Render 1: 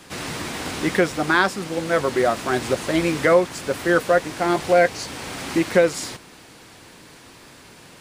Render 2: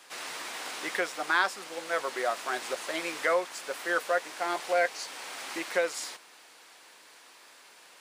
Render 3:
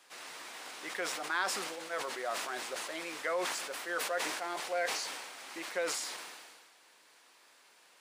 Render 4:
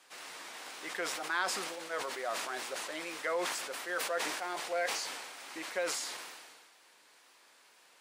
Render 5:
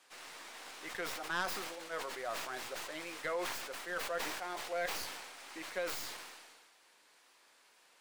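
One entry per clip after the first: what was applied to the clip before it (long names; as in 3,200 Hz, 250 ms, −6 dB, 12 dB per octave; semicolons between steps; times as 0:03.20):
high-pass filter 650 Hz 12 dB per octave; level −6.5 dB
level that may fall only so fast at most 34 dB per second; level −8 dB
tape wow and flutter 54 cents
stylus tracing distortion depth 0.15 ms; level −3.5 dB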